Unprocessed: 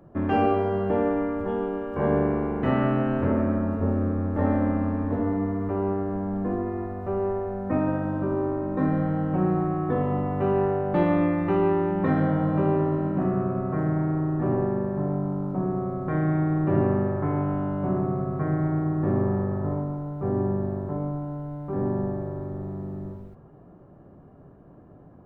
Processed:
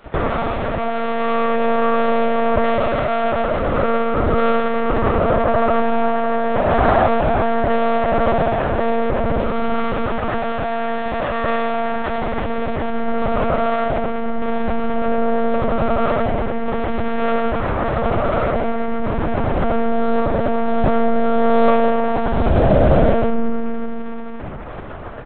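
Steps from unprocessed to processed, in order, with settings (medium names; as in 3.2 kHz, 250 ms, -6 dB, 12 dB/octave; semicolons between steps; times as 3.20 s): Chebyshev band-pass 140–1400 Hz, order 2; tilt shelf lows -4.5 dB, about 820 Hz; comb 1.6 ms, depth 86%; waveshaping leveller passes 5; compressor with a negative ratio -20 dBFS, ratio -0.5; feedback delay 83 ms, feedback 27%, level -11 dB; on a send at -1.5 dB: reverberation RT60 3.5 s, pre-delay 25 ms; on the sum: monotone LPC vocoder at 8 kHz 230 Hz; trim +1 dB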